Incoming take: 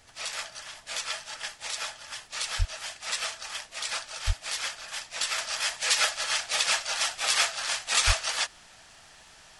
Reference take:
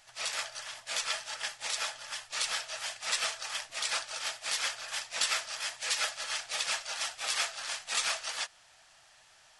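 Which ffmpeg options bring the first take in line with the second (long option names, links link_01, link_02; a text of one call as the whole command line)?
ffmpeg -i in.wav -filter_complex "[0:a]adeclick=threshold=4,asplit=3[link_01][link_02][link_03];[link_01]afade=type=out:start_time=2.58:duration=0.02[link_04];[link_02]highpass=frequency=140:width=0.5412,highpass=frequency=140:width=1.3066,afade=type=in:start_time=2.58:duration=0.02,afade=type=out:start_time=2.7:duration=0.02[link_05];[link_03]afade=type=in:start_time=2.7:duration=0.02[link_06];[link_04][link_05][link_06]amix=inputs=3:normalize=0,asplit=3[link_07][link_08][link_09];[link_07]afade=type=out:start_time=4.26:duration=0.02[link_10];[link_08]highpass=frequency=140:width=0.5412,highpass=frequency=140:width=1.3066,afade=type=in:start_time=4.26:duration=0.02,afade=type=out:start_time=4.38:duration=0.02[link_11];[link_09]afade=type=in:start_time=4.38:duration=0.02[link_12];[link_10][link_11][link_12]amix=inputs=3:normalize=0,asplit=3[link_13][link_14][link_15];[link_13]afade=type=out:start_time=8.06:duration=0.02[link_16];[link_14]highpass=frequency=140:width=0.5412,highpass=frequency=140:width=1.3066,afade=type=in:start_time=8.06:duration=0.02,afade=type=out:start_time=8.18:duration=0.02[link_17];[link_15]afade=type=in:start_time=8.18:duration=0.02[link_18];[link_16][link_17][link_18]amix=inputs=3:normalize=0,agate=range=-21dB:threshold=-45dB,asetnsamples=nb_out_samples=441:pad=0,asendcmd='5.38 volume volume -7dB',volume=0dB" out.wav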